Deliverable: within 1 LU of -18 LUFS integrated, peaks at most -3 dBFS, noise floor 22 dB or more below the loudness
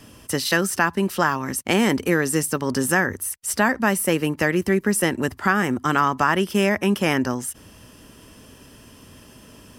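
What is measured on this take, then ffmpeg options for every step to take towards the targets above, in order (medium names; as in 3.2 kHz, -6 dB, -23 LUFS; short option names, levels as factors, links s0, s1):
loudness -21.5 LUFS; peak level -4.0 dBFS; loudness target -18.0 LUFS
-> -af "volume=1.5,alimiter=limit=0.708:level=0:latency=1"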